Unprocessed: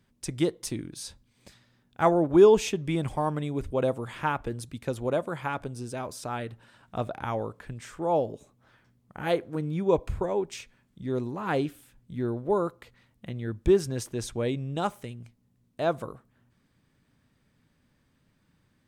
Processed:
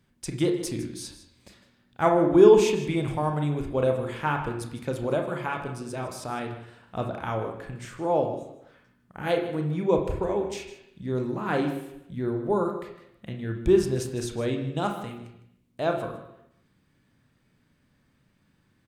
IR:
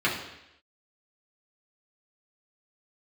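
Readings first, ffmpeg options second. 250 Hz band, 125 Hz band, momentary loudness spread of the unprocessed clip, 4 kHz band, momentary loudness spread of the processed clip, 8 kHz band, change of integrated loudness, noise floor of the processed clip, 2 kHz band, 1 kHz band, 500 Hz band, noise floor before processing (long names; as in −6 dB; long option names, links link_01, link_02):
+2.5 dB, +2.5 dB, 16 LU, +1.5 dB, 17 LU, +0.5 dB, +2.0 dB, −67 dBFS, +2.5 dB, +1.5 dB, +2.0 dB, −69 dBFS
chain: -filter_complex "[0:a]aecho=1:1:156:0.188,asplit=2[link_01][link_02];[1:a]atrim=start_sample=2205,adelay=29[link_03];[link_02][link_03]afir=irnorm=-1:irlink=0,volume=-16.5dB[link_04];[link_01][link_04]amix=inputs=2:normalize=0"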